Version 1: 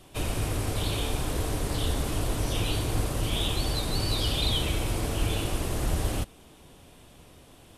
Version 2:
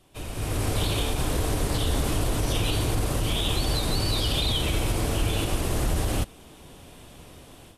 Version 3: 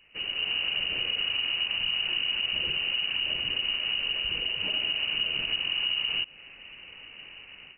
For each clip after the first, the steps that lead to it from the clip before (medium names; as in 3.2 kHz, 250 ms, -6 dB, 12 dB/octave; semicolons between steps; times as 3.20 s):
level rider gain up to 13 dB; peak limiter -8 dBFS, peak gain reduction 5 dB; trim -7.5 dB
dynamic bell 860 Hz, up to -5 dB, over -45 dBFS, Q 0.96; compression, threshold -27 dBFS, peak gain reduction 7.5 dB; frequency inversion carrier 2.9 kHz